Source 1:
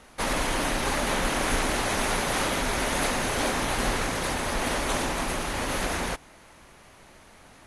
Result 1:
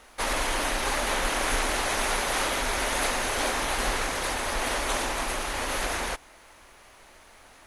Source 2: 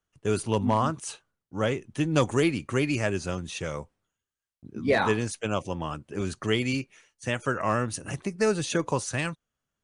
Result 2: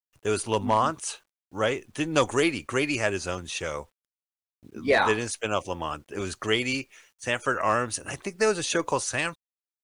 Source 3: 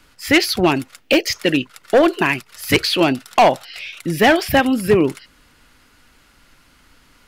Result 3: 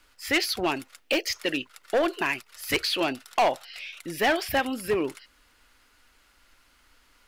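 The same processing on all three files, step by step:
parametric band 150 Hz −11.5 dB 1.9 octaves
in parallel at −4 dB: hard clipping −14 dBFS
on the sum: bit reduction 11 bits
loudness normalisation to −27 LKFS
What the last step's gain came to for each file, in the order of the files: −3.5, −0.5, −11.5 decibels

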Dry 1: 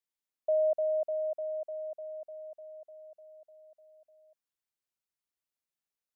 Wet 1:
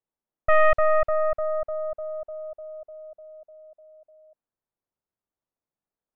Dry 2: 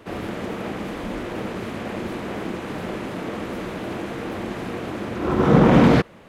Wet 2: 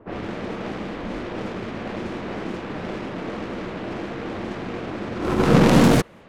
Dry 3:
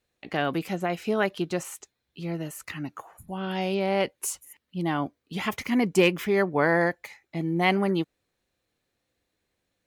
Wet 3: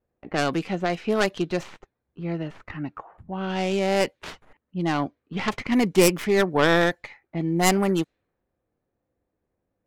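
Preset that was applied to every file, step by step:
stylus tracing distortion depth 0.45 ms
low-pass that shuts in the quiet parts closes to 930 Hz, open at −21 dBFS
loudness normalisation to −24 LKFS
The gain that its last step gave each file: +9.0, −1.0, +2.5 decibels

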